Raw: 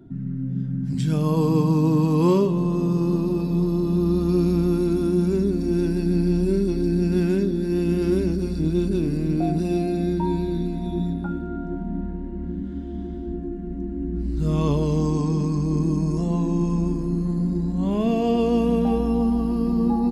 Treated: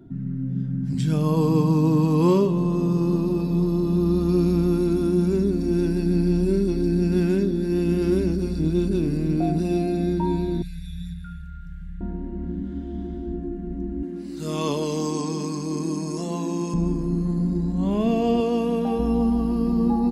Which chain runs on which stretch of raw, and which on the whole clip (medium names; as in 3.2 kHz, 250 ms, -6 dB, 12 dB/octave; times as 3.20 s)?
10.62–12.01 s: Chebyshev band-stop 160–1500 Hz, order 5 + treble shelf 8 kHz +9.5 dB
14.03–16.74 s: high-pass 260 Hz + treble shelf 2.3 kHz +9 dB
18.40–18.99 s: high-pass 270 Hz 6 dB/octave + band-stop 2 kHz, Q 23
whole clip: none